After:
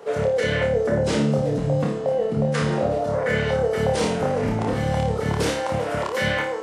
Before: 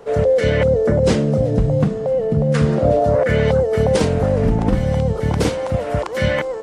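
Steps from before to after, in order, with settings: high-pass 370 Hz 6 dB/octave; peak limiter -14 dBFS, peak gain reduction 7.5 dB; flutter echo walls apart 4.8 m, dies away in 0.43 s

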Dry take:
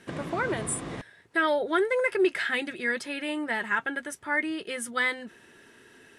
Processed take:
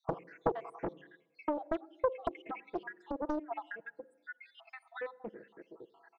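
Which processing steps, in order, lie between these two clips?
random holes in the spectrogram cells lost 76%; comb 6.1 ms, depth 68%; compression 12:1, threshold -37 dBFS, peak gain reduction 18 dB; band-pass filter 450 Hz, Q 2.2; distance through air 110 m; on a send at -22 dB: reverberation RT60 1.0 s, pre-delay 46 ms; on the sum: loudspeaker Doppler distortion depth 0.99 ms; trim +13 dB

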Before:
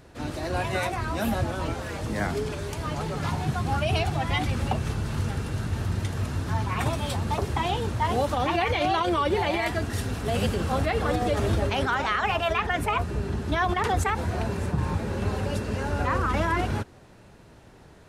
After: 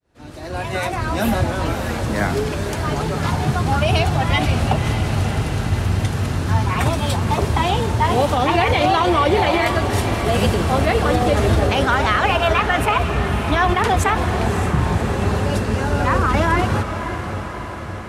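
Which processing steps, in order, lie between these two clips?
fade-in on the opening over 1.14 s; echo that smears into a reverb 561 ms, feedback 65%, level -9 dB; trim +7.5 dB

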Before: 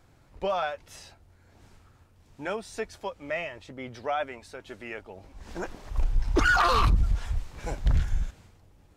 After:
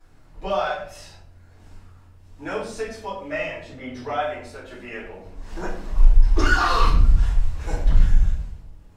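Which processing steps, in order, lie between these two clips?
dynamic bell 5.4 kHz, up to +5 dB, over -47 dBFS, Q 1.1; peak limiter -18.5 dBFS, peak gain reduction 4.5 dB; simulated room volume 86 m³, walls mixed, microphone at 3.1 m; trim -8.5 dB

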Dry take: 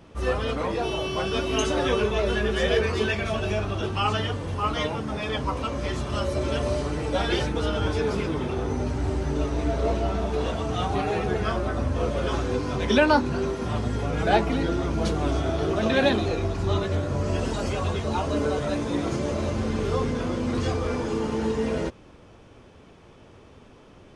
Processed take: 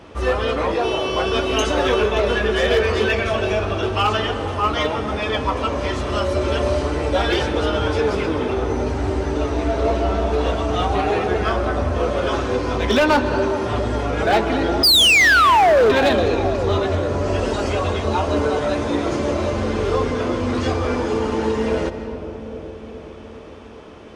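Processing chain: treble shelf 6.8 kHz -9 dB; on a send at -11.5 dB: reverberation RT60 2.1 s, pre-delay 118 ms; on the sum: painted sound fall, 14.83–15.92 s, 390–5100 Hz -16 dBFS; high-pass 52 Hz 12 dB/octave; peaking EQ 150 Hz -10 dB 1.2 oct; bucket-brigade echo 408 ms, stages 2048, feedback 65%, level -12 dB; in parallel at -3 dB: compression 8:1, threshold -37 dBFS, peak gain reduction 21.5 dB; on the sum: overload inside the chain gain 17 dB; trim +6 dB

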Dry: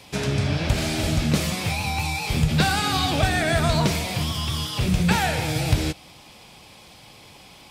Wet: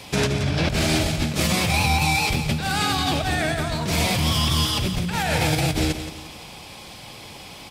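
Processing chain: compressor with a negative ratio -26 dBFS, ratio -1; feedback delay 173 ms, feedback 39%, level -10.5 dB; trim +3.5 dB

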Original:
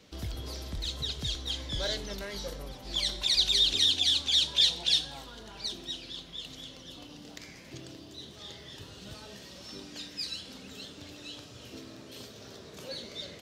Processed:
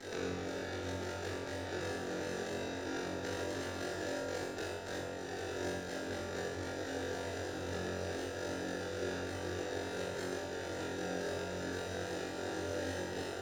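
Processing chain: sample-and-hold 41×; resampled via 16 kHz; full-wave rectifier; ring modulator 25 Hz; compression 16:1, threshold -57 dBFS, peak gain reduction 36 dB; mains buzz 100 Hz, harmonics 22, -79 dBFS -5 dB/octave; resonant low shelf 270 Hz -12.5 dB, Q 1.5; flutter echo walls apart 3.8 m, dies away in 0.67 s; reverberation RT60 1.1 s, pre-delay 3 ms, DRR -0.5 dB; trim +17.5 dB

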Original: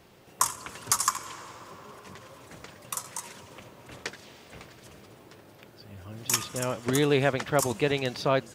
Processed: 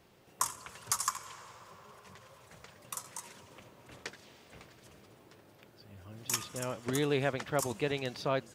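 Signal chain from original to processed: 0.60–2.75 s: peaking EQ 290 Hz -13.5 dB 0.44 oct; trim -7 dB

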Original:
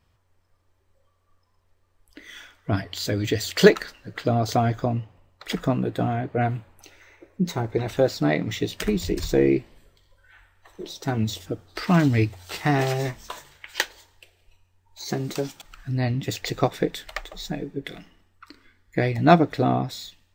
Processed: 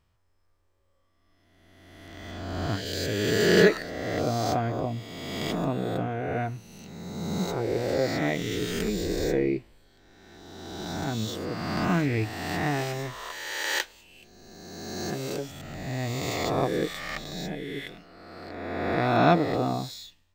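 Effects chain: reverse spectral sustain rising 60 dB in 1.89 s; 2.31–2.86 s: treble shelf 9.2 kHz -7 dB; trim -8 dB

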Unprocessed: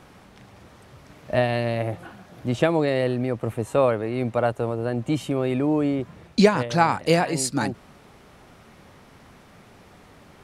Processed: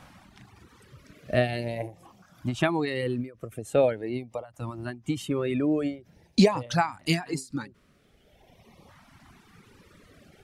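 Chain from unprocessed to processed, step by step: LFO notch saw up 0.45 Hz 380–1600 Hz; reverb removal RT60 1.8 s; endings held to a fixed fall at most 180 dB/s

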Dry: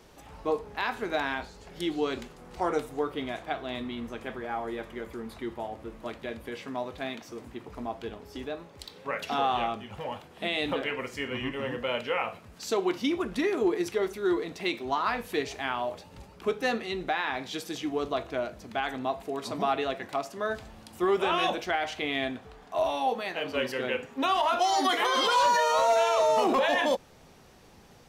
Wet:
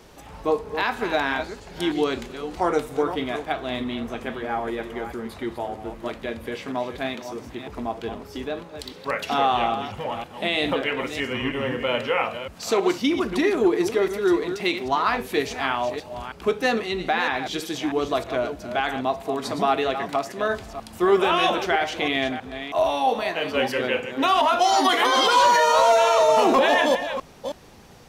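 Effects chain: chunks repeated in reverse 320 ms, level -9.5 dB; trim +6 dB

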